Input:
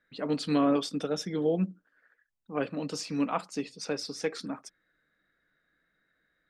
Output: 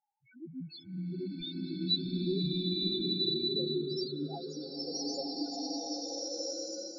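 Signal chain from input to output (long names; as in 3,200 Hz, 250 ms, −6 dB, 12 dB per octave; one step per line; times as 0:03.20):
gliding playback speed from 50% → 136%
high-pass filter 600 Hz 6 dB per octave
high shelf with overshoot 3,000 Hz +9 dB, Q 3
in parallel at −6 dB: sample-and-hold swept by an LFO 29×, swing 60% 0.83 Hz
on the sum: spectral peaks only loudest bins 1
slow-attack reverb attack 1,480 ms, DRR −6.5 dB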